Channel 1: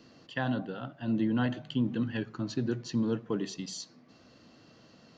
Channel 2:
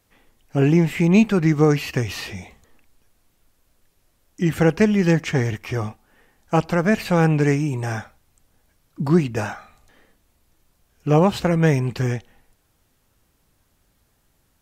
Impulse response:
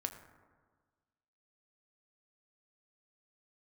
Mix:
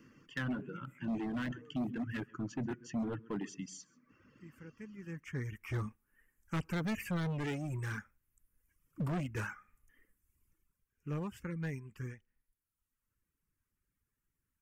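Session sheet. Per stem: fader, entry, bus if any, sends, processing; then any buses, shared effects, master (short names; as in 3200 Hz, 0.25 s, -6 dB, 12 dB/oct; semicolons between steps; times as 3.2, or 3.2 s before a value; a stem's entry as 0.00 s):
-0.5 dB, 0.00 s, no send, echo send -13.5 dB, notches 60/120/180 Hz
4.7 s -17 dB -> 5.27 s -7.5 dB -> 10.44 s -7.5 dB -> 10.97 s -17.5 dB, 0.00 s, no send, no echo send, auto duck -15 dB, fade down 0.90 s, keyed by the first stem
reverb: off
echo: echo 0.134 s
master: fixed phaser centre 1700 Hz, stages 4; overloaded stage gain 31 dB; reverb removal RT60 1.1 s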